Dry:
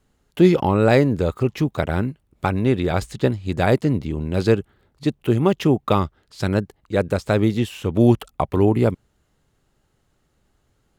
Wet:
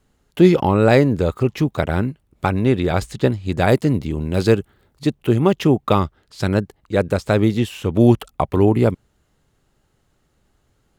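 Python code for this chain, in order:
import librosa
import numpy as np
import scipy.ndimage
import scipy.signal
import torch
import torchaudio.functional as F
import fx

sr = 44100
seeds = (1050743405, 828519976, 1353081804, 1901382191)

y = fx.high_shelf(x, sr, hz=7100.0, db=7.0, at=(3.68, 5.07))
y = y * 10.0 ** (2.0 / 20.0)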